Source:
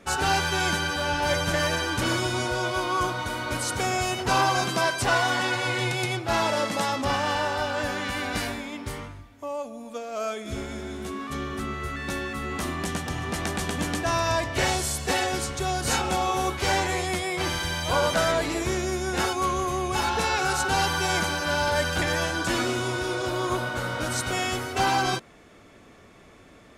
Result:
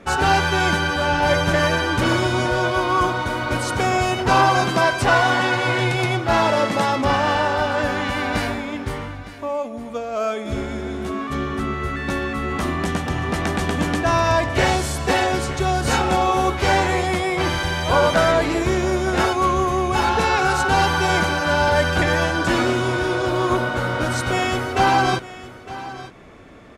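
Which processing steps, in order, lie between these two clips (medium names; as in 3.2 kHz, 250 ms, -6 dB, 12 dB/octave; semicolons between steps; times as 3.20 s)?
treble shelf 4.1 kHz -11 dB; delay 910 ms -16 dB; trim +7.5 dB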